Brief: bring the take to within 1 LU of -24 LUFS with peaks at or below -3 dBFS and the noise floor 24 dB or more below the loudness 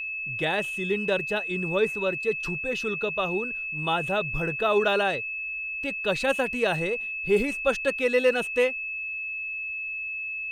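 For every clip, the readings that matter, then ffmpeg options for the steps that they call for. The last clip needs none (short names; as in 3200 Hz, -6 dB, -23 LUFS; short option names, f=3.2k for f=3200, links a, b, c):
steady tone 2600 Hz; tone level -30 dBFS; loudness -26.0 LUFS; peak -10.0 dBFS; loudness target -24.0 LUFS
-> -af "bandreject=f=2.6k:w=30"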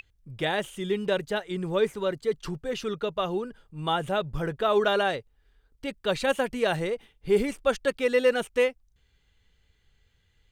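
steady tone none; loudness -27.5 LUFS; peak -10.5 dBFS; loudness target -24.0 LUFS
-> -af "volume=3.5dB"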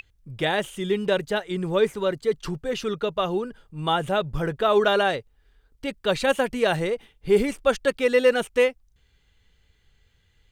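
loudness -24.0 LUFS; peak -7.0 dBFS; noise floor -64 dBFS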